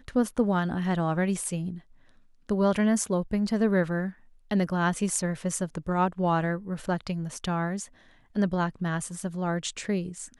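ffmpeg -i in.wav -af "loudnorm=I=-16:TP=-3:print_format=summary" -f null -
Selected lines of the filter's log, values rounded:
Input Integrated:    -28.5 LUFS
Input True Peak:     -11.1 dBTP
Input LRA:             3.8 LU
Input Threshold:     -38.9 LUFS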